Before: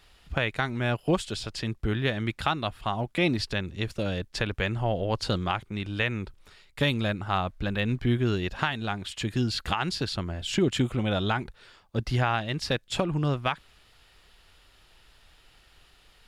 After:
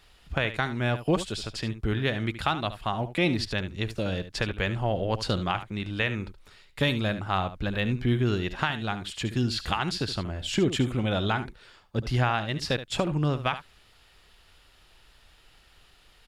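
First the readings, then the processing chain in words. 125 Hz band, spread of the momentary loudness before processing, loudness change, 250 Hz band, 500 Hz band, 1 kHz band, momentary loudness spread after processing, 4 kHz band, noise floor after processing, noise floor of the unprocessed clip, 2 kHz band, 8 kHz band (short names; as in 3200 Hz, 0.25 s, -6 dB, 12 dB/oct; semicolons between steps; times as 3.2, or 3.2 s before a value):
+0.5 dB, 6 LU, 0.0 dB, 0.0 dB, 0.0 dB, 0.0 dB, 7 LU, 0.0 dB, -59 dBFS, -59 dBFS, 0.0 dB, 0.0 dB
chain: echo 73 ms -12.5 dB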